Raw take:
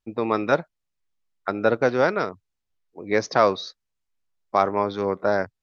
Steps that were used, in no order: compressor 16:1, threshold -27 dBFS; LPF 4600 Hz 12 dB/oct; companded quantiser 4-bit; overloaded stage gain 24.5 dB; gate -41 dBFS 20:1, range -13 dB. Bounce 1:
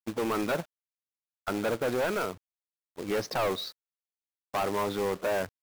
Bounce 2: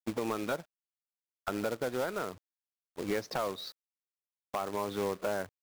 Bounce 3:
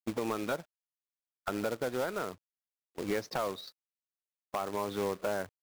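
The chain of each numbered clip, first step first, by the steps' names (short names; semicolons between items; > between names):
overloaded stage > compressor > gate > LPF > companded quantiser; LPF > gate > companded quantiser > compressor > overloaded stage; LPF > companded quantiser > compressor > gate > overloaded stage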